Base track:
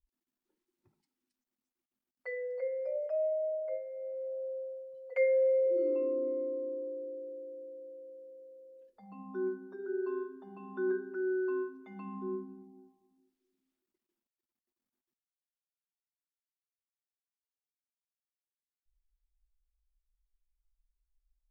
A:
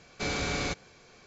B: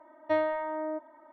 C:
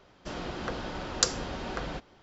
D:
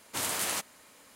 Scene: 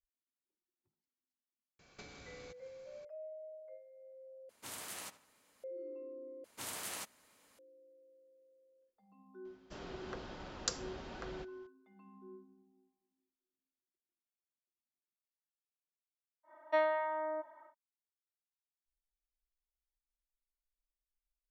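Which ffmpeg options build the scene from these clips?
-filter_complex "[4:a]asplit=2[s0][s1];[0:a]volume=0.158[s2];[1:a]acompressor=threshold=0.00398:ratio=4:attack=50:release=224:knee=1:detection=peak[s3];[s0]asplit=2[s4][s5];[s5]adelay=76,lowpass=f=3200:p=1,volume=0.2,asplit=2[s6][s7];[s7]adelay=76,lowpass=f=3200:p=1,volume=0.4,asplit=2[s8][s9];[s9]adelay=76,lowpass=f=3200:p=1,volume=0.4,asplit=2[s10][s11];[s11]adelay=76,lowpass=f=3200:p=1,volume=0.4[s12];[s4][s6][s8][s10][s12]amix=inputs=5:normalize=0[s13];[2:a]highpass=620[s14];[s2]asplit=3[s15][s16][s17];[s15]atrim=end=4.494[s18];[s13]atrim=end=1.15,asetpts=PTS-STARTPTS,volume=0.188[s19];[s16]atrim=start=5.636:end=6.444[s20];[s1]atrim=end=1.15,asetpts=PTS-STARTPTS,volume=0.266[s21];[s17]atrim=start=7.586[s22];[s3]atrim=end=1.26,asetpts=PTS-STARTPTS,volume=0.335,afade=t=in:d=0.004:c=hsin,afade=t=out:st=1.256:d=0.004:c=hsin,adelay=1790[s23];[3:a]atrim=end=2.22,asetpts=PTS-STARTPTS,volume=0.266,afade=t=in:d=0.004:c=hsin,afade=t=out:st=2.216:d=0.004:c=hsin,adelay=9450[s24];[s14]atrim=end=1.32,asetpts=PTS-STARTPTS,volume=0.891,afade=t=in:d=0.1,afade=t=out:st=1.22:d=0.1,adelay=16430[s25];[s18][s19]acrossfade=d=0.004:c1=hsin:c2=hsin[s26];[s26][s20]acrossfade=d=0.004:c1=hsin:c2=hsin[s27];[s27][s21]acrossfade=d=0.004:c1=hsin:c2=hsin[s28];[s28][s22]acrossfade=d=0.004:c1=hsin:c2=hsin[s29];[s29][s23][s24][s25]amix=inputs=4:normalize=0"

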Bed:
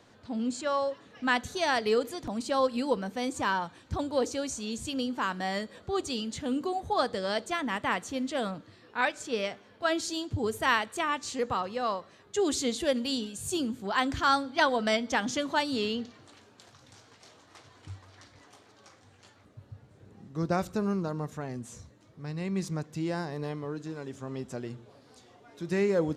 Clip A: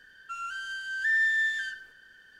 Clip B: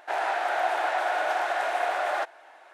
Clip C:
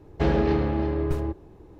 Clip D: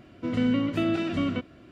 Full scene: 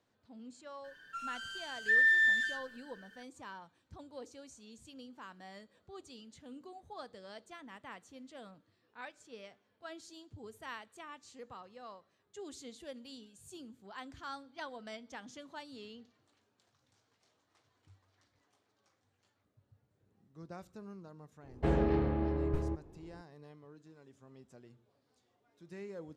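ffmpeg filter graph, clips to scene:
-filter_complex "[0:a]volume=0.106[s0];[1:a]aecho=1:1:6.8:0.85[s1];[3:a]highshelf=f=3800:g=-11.5[s2];[s1]atrim=end=2.39,asetpts=PTS-STARTPTS,volume=0.531,afade=t=in:d=0.004:c=hsin,afade=t=out:st=2.386:d=0.004:c=hsin,adelay=840[s3];[s2]atrim=end=1.79,asetpts=PTS-STARTPTS,volume=0.422,afade=t=in:d=0.004:c=hsin,afade=t=out:st=1.786:d=0.004:c=hsin,adelay=21430[s4];[s0][s3][s4]amix=inputs=3:normalize=0"

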